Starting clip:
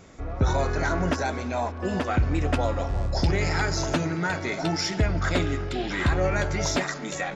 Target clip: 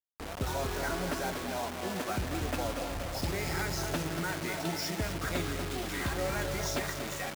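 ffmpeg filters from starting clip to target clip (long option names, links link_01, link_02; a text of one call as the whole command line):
ffmpeg -i in.wav -filter_complex "[0:a]asplit=2[link_01][link_02];[link_02]adelay=239,lowpass=frequency=1600:poles=1,volume=-5.5dB,asplit=2[link_03][link_04];[link_04]adelay=239,lowpass=frequency=1600:poles=1,volume=0.54,asplit=2[link_05][link_06];[link_06]adelay=239,lowpass=frequency=1600:poles=1,volume=0.54,asplit=2[link_07][link_08];[link_08]adelay=239,lowpass=frequency=1600:poles=1,volume=0.54,asplit=2[link_09][link_10];[link_10]adelay=239,lowpass=frequency=1600:poles=1,volume=0.54,asplit=2[link_11][link_12];[link_12]adelay=239,lowpass=frequency=1600:poles=1,volume=0.54,asplit=2[link_13][link_14];[link_14]adelay=239,lowpass=frequency=1600:poles=1,volume=0.54[link_15];[link_01][link_03][link_05][link_07][link_09][link_11][link_13][link_15]amix=inputs=8:normalize=0,acrusher=bits=4:mix=0:aa=0.000001,lowshelf=frequency=100:gain=-8,volume=-8.5dB" out.wav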